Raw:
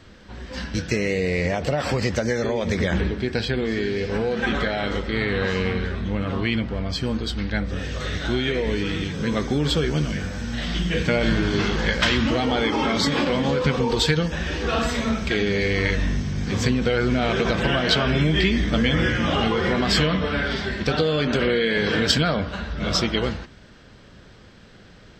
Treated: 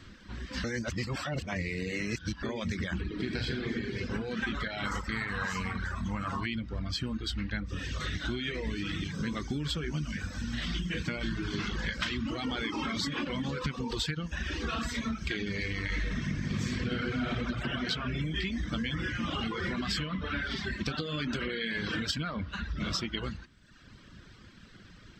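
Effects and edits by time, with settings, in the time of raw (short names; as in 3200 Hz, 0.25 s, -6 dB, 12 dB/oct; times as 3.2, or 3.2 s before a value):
0.64–2.43 reverse
3.06–3.68 reverb throw, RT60 2.3 s, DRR -2 dB
4.85–6.46 EQ curve 220 Hz 0 dB, 360 Hz -6 dB, 880 Hz +12 dB, 3500 Hz -3 dB, 7300 Hz +14 dB
15.87–17.28 reverb throw, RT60 2.9 s, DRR -8.5 dB
whole clip: reverb removal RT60 0.93 s; band shelf 600 Hz -8.5 dB 1.3 oct; compressor, threshold -28 dBFS; gain -2 dB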